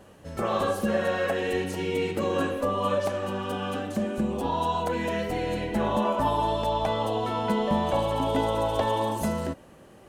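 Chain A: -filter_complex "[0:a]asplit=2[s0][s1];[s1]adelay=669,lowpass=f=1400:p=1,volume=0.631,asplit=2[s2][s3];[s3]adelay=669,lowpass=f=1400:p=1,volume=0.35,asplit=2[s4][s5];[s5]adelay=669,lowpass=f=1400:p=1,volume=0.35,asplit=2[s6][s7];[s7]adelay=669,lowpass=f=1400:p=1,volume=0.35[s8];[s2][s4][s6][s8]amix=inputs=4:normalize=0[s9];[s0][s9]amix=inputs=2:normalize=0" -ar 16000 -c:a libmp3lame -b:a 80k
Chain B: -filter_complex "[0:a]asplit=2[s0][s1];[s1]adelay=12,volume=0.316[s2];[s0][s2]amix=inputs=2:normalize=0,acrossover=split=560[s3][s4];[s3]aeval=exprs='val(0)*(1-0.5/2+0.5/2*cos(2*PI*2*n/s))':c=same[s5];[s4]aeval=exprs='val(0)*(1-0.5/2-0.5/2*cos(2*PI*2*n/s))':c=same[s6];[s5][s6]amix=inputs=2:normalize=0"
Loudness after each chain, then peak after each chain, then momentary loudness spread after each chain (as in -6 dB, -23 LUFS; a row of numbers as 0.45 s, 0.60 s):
-26.5 LUFS, -29.0 LUFS; -11.0 dBFS, -14.0 dBFS; 4 LU, 5 LU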